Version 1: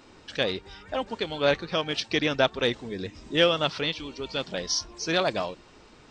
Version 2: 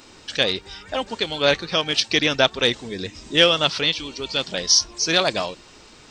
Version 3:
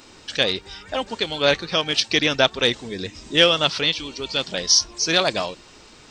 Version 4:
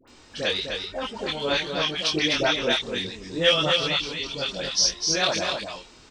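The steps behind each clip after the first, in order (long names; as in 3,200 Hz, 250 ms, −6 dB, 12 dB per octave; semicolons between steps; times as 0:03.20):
high-shelf EQ 3,100 Hz +11.5 dB; level +3 dB
no processing that can be heard
all-pass dispersion highs, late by 78 ms, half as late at 1,100 Hz; multi-voice chorus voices 4, 1 Hz, delay 23 ms, depth 3 ms; on a send: single-tap delay 253 ms −5.5 dB; on the sum: level −1.5 dB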